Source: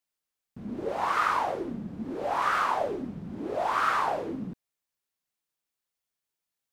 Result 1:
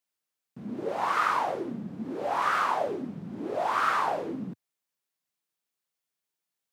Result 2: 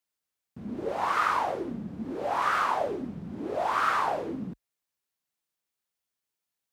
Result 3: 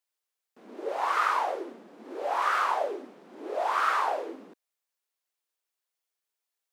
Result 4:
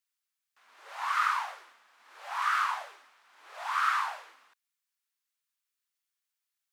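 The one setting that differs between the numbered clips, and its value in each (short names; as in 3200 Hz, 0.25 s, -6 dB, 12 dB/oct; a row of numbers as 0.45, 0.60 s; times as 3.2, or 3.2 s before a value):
HPF, cutoff: 110, 41, 370, 1100 Hz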